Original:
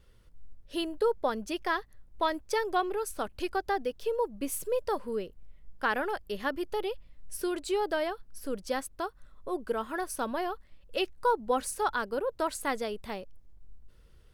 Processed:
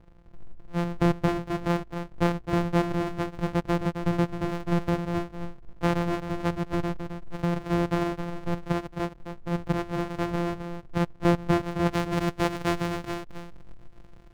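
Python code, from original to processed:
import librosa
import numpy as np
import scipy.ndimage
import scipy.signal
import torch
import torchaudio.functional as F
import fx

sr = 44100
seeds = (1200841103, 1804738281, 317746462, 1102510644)

y = np.r_[np.sort(x[:len(x) // 256 * 256].reshape(-1, 256), axis=1).ravel(), x[len(x) // 256 * 256:]]
y = fx.lowpass(y, sr, hz=fx.steps((0.0, 1300.0), (11.91, 3100.0)), slope=6)
y = y + 10.0 ** (-8.5 / 20.0) * np.pad(y, (int(264 * sr / 1000.0), 0))[:len(y)]
y = y * librosa.db_to_amplitude(5.5)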